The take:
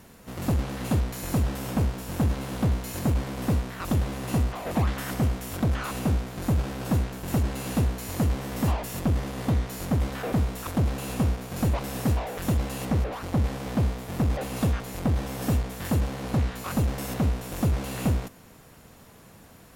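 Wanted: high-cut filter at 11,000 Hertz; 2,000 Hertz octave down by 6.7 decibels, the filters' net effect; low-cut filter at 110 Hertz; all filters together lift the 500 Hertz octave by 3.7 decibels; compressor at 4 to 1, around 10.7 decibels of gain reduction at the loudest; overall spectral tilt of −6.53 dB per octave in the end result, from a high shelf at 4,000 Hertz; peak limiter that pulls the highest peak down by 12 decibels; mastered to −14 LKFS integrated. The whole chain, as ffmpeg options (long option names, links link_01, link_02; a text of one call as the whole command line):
ffmpeg -i in.wav -af "highpass=110,lowpass=11000,equalizer=frequency=500:width_type=o:gain=5,equalizer=frequency=2000:width_type=o:gain=-8,highshelf=frequency=4000:gain=-5.5,acompressor=threshold=-33dB:ratio=4,volume=26.5dB,alimiter=limit=-4.5dB:level=0:latency=1" out.wav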